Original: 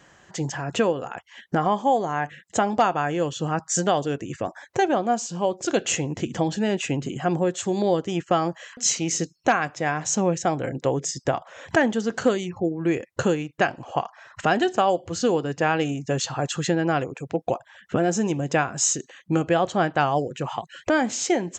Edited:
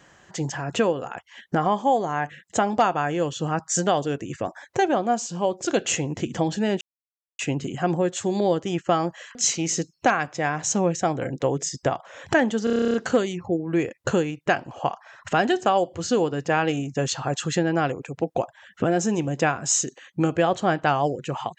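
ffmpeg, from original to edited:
-filter_complex "[0:a]asplit=12[a][b][c][d][e][f][g][h][i][j][k][l];[a]atrim=end=6.81,asetpts=PTS-STARTPTS,afade=t=out:st=6.806:d=0.004:c=hsin,apad=pad_dur=0.58[m];[b]atrim=start=6.81:end=12.092,asetpts=PTS-STARTPTS,afade=t=in:d=0.004:c=hsin[n];[c]atrim=start=12.058:end=12.092[o];[d]atrim=start=12.058:end=12.092[p];[e]atrim=start=12.058:end=12.092[q];[f]atrim=start=12.058:end=12.092[r];[g]atrim=start=12.058:end=12.092[s];[h]atrim=start=12.058:end=12.092[t];[i]atrim=start=12.058:end=12.092[u];[j]atrim=start=12.058:end=12.092[v];[k]atrim=start=12.058:end=12.092[w];[l]atrim=start=12.058[x];[m][n]concat=n=2:v=0:a=1[y];[y][o]acrossfade=d=0.004:c1=hsin:c2=hsin[z];[z][p]acrossfade=d=0.004:c1=hsin:c2=hsin[aa];[aa][q]acrossfade=d=0.004:c1=hsin:c2=hsin[ab];[ab][r]acrossfade=d=0.004:c1=hsin:c2=hsin[ac];[ac][s]acrossfade=d=0.004:c1=hsin:c2=hsin[ad];[ad][t]acrossfade=d=0.004:c1=hsin:c2=hsin[ae];[ae][u]acrossfade=d=0.004:c1=hsin:c2=hsin[af];[af][v]acrossfade=d=0.004:c1=hsin:c2=hsin[ag];[ag][w]acrossfade=d=0.004:c1=hsin:c2=hsin[ah];[ah][x]acrossfade=d=0.004:c1=hsin:c2=hsin"

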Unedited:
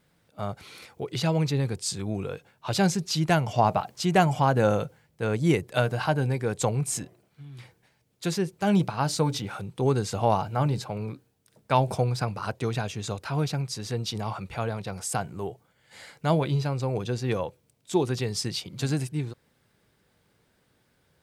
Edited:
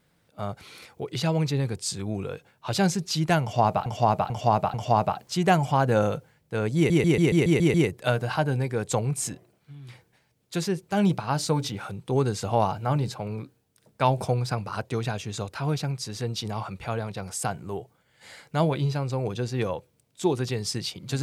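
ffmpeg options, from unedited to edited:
-filter_complex "[0:a]asplit=11[a][b][c][d][e][f][g][h][i][j][k];[a]atrim=end=3.862[l];[b]atrim=start=3.418:end=3.862[m];[c]atrim=start=3.418:end=3.862[n];[d]atrim=start=3.418:end=5.582[o];[e]atrim=start=5.438:end=5.582[p];[f]atrim=start=5.438:end=5.582[q];[g]atrim=start=5.438:end=5.582[r];[h]atrim=start=5.438:end=5.582[s];[i]atrim=start=5.438:end=5.582[t];[j]atrim=start=5.438:end=5.582[u];[k]atrim=start=5.438[v];[l][m]acrossfade=d=0.004:c1=hsin:c2=hsin[w];[w][n]acrossfade=d=0.004:c1=hsin:c2=hsin[x];[x][o]acrossfade=d=0.004:c1=hsin:c2=hsin[y];[y][p]acrossfade=d=0.004:c1=hsin:c2=hsin[z];[z][q]acrossfade=d=0.004:c1=hsin:c2=hsin[aa];[aa][r]acrossfade=d=0.004:c1=hsin:c2=hsin[ab];[ab][s]acrossfade=d=0.004:c1=hsin:c2=hsin[ac];[ac][t]acrossfade=d=0.004:c1=hsin:c2=hsin[ad];[ad][u]acrossfade=d=0.004:c1=hsin:c2=hsin[ae];[ae][v]acrossfade=d=0.004:c1=hsin:c2=hsin"

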